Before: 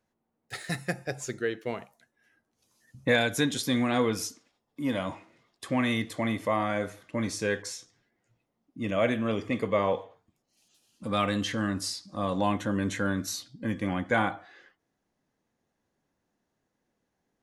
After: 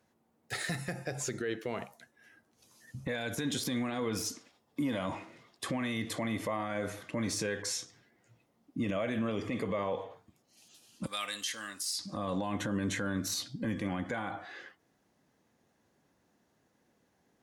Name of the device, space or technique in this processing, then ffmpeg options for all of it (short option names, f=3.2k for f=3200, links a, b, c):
podcast mastering chain: -filter_complex "[0:a]asettb=1/sr,asplit=3[a][b][c];[a]atrim=end=11.064[d];[b]atrim=start=11.06:end=11.99,asetpts=PTS-STARTPTS,afade=t=in:d=0.004:c=qsin,afade=t=out:st=0.926:d=0.004:c=qsin,aderivative[e];[c]atrim=start=11.986[f];[d][e]acrossfade=d=0.004:c1=hsin:c2=qsin[g];[g][f]acrossfade=d=0.004:c1=qsin:c2=hsin,highpass=62,deesser=0.75,acompressor=threshold=-35dB:ratio=2,alimiter=level_in=7.5dB:limit=-24dB:level=0:latency=1:release=62,volume=-7.5dB,volume=7.5dB" -ar 48000 -c:a libmp3lame -b:a 112k